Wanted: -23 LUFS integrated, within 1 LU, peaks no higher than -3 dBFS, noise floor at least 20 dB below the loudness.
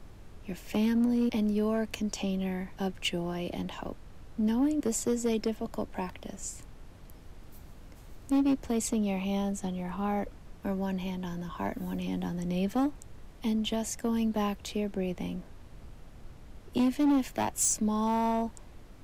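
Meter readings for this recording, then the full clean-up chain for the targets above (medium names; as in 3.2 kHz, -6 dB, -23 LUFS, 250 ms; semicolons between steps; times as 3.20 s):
clipped samples 1.2%; clipping level -21.5 dBFS; noise floor -50 dBFS; noise floor target -51 dBFS; loudness -31.0 LUFS; peak level -21.5 dBFS; loudness target -23.0 LUFS
-> clip repair -21.5 dBFS; noise print and reduce 6 dB; trim +8 dB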